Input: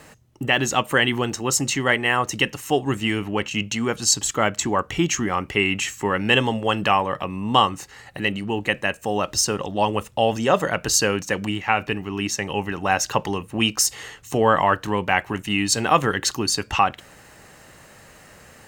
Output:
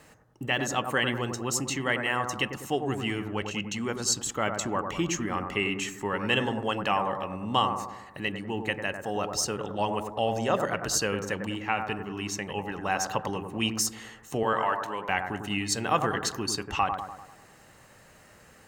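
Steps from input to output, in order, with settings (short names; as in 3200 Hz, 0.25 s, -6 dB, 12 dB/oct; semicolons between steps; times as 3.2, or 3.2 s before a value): 14.43–15.09 HPF 620 Hz 6 dB/oct; on a send: analogue delay 98 ms, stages 1024, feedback 52%, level -6 dB; on the sum: gain -8 dB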